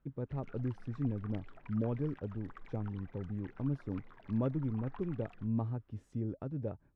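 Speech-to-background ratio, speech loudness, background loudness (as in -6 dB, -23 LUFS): 19.5 dB, -38.5 LUFS, -58.0 LUFS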